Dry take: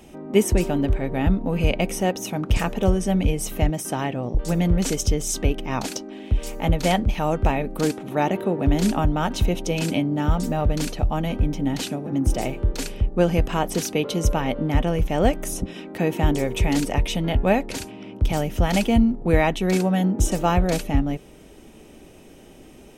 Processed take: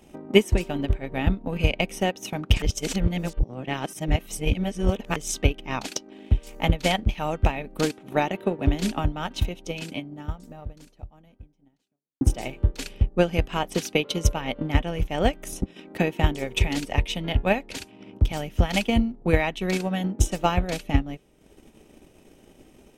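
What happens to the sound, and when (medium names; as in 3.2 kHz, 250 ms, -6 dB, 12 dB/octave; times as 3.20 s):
2.62–5.16 s: reverse
8.95–12.21 s: fade out quadratic
whole clip: dynamic bell 2.9 kHz, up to +7 dB, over -43 dBFS, Q 0.78; transient shaper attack +9 dB, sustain -7 dB; trim -7 dB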